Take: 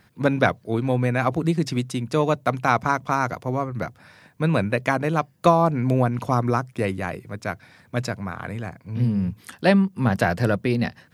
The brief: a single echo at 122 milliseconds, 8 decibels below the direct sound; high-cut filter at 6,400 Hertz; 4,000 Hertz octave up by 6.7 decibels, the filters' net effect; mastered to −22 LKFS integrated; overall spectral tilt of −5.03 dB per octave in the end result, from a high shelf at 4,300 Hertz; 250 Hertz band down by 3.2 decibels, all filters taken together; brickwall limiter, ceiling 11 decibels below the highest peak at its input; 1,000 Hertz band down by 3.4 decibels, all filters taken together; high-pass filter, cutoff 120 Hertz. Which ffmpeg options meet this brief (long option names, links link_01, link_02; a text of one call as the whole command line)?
ffmpeg -i in.wav -af "highpass=120,lowpass=6400,equalizer=frequency=250:width_type=o:gain=-3.5,equalizer=frequency=1000:width_type=o:gain=-5,equalizer=frequency=4000:width_type=o:gain=7,highshelf=frequency=4300:gain=3.5,alimiter=limit=-14dB:level=0:latency=1,aecho=1:1:122:0.398,volume=5dB" out.wav